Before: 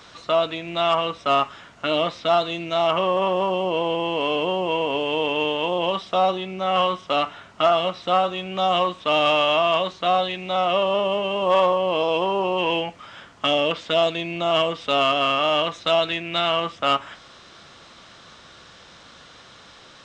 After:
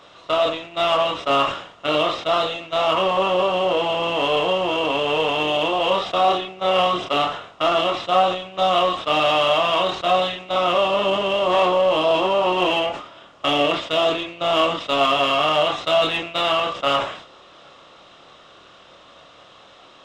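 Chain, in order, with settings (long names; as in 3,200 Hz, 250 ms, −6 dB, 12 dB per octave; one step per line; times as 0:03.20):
compressor on every frequency bin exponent 0.6
noise gate −21 dBFS, range −14 dB
multi-voice chorus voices 6, 0.33 Hz, delay 27 ms, depth 2 ms
in parallel at −10 dB: hard clipping −23.5 dBFS, distortion −7 dB
on the sum: level that may fall only so fast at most 95 dB per second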